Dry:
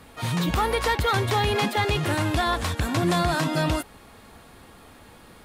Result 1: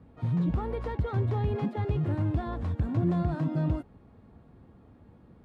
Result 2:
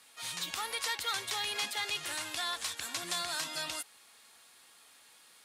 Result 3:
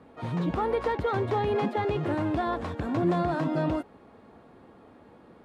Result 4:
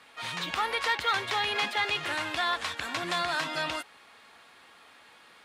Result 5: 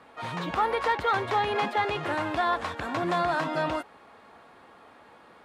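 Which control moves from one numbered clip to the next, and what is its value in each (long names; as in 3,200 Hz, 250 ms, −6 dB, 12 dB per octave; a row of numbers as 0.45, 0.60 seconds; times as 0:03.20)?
resonant band-pass, frequency: 120, 7,400, 360, 2,500, 930 Hertz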